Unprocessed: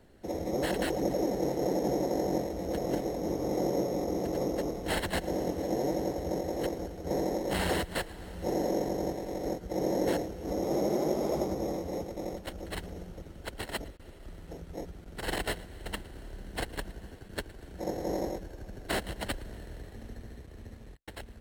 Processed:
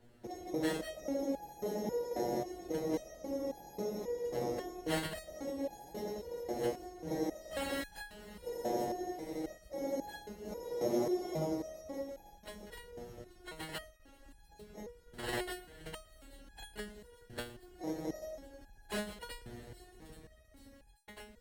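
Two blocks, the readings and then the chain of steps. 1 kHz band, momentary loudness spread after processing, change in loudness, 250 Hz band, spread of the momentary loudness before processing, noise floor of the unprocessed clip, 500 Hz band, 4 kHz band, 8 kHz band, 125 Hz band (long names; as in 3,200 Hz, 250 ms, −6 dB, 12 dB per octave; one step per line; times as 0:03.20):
−7.0 dB, 15 LU, −7.0 dB, −7.0 dB, 16 LU, −50 dBFS, −6.5 dB, −6.5 dB, −6.0 dB, −10.0 dB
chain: delay with a high-pass on its return 832 ms, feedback 65%, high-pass 4,800 Hz, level −15 dB
step-sequenced resonator 3.7 Hz 120–830 Hz
level +7 dB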